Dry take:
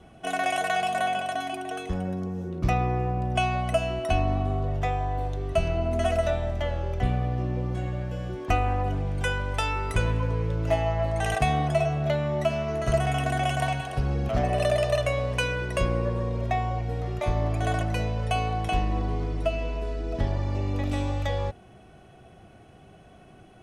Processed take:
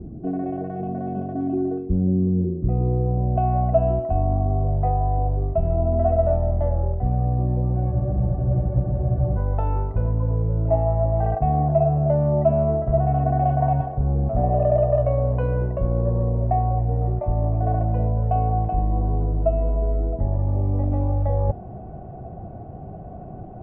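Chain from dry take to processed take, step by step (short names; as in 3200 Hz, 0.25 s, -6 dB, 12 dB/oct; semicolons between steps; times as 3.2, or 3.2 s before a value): tone controls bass +10 dB, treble -10 dB; reverse; compressor 6:1, threshold -26 dBFS, peak gain reduction 15.5 dB; reverse; low-pass sweep 340 Hz -> 720 Hz, 2.35–3.59; spectral freeze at 7.93, 1.45 s; gain +7 dB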